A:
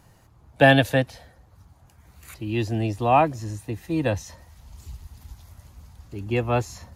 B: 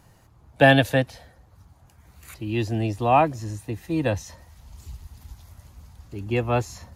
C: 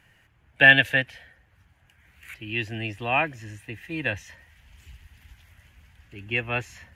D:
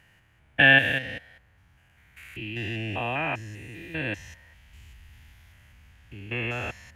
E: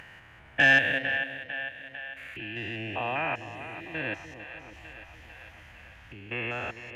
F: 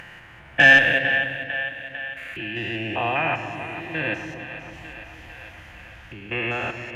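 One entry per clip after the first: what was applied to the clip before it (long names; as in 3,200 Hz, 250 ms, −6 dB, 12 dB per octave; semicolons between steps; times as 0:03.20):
no processing that can be heard
flat-topped bell 2,200 Hz +15.5 dB 1.3 octaves; level −8.5 dB
spectrum averaged block by block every 200 ms; level +1.5 dB
echo with a time of its own for lows and highs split 540 Hz, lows 297 ms, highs 450 ms, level −12 dB; upward compression, threshold −35 dBFS; mid-hump overdrive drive 10 dB, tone 1,700 Hz, clips at −4 dBFS; level −3 dB
rectangular room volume 2,700 cubic metres, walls mixed, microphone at 0.86 metres; level +6 dB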